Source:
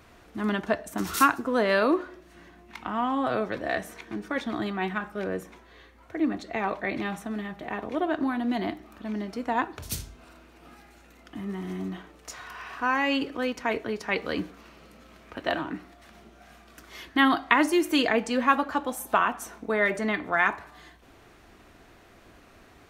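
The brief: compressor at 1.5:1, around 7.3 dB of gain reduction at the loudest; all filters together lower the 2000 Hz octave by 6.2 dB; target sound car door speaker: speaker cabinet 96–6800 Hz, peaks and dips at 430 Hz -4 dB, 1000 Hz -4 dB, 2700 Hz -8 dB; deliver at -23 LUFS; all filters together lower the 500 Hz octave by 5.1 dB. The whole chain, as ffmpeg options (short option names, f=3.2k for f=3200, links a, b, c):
-af "equalizer=f=500:t=o:g=-4.5,equalizer=f=2k:t=o:g=-6,acompressor=threshold=-38dB:ratio=1.5,highpass=96,equalizer=f=430:t=q:w=4:g=-4,equalizer=f=1k:t=q:w=4:g=-4,equalizer=f=2.7k:t=q:w=4:g=-8,lowpass=f=6.8k:w=0.5412,lowpass=f=6.8k:w=1.3066,volume=14dB"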